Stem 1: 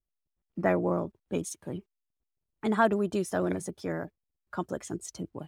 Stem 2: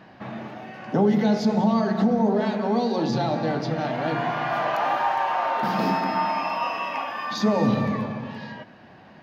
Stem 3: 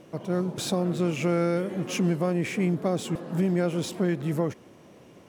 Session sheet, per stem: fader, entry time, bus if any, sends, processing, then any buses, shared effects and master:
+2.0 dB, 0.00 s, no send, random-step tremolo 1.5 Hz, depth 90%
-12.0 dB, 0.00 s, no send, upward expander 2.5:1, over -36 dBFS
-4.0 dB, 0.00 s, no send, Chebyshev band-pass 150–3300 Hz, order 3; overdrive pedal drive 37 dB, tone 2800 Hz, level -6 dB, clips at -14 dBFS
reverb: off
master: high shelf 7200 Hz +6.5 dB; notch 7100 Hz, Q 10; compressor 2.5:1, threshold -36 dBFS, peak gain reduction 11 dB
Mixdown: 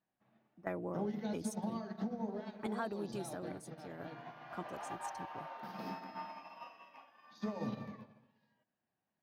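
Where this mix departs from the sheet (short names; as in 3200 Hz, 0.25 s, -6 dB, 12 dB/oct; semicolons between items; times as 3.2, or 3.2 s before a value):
stem 1 +2.0 dB -> -5.5 dB; stem 3: muted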